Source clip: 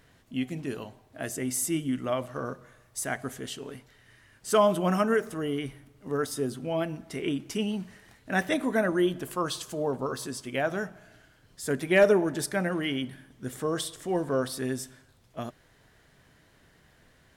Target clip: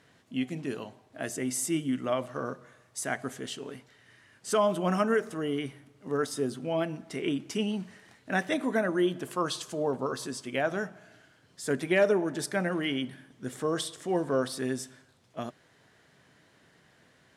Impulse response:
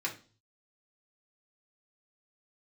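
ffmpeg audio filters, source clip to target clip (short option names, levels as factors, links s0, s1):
-af "lowpass=9700,alimiter=limit=0.168:level=0:latency=1:release=493,highpass=130"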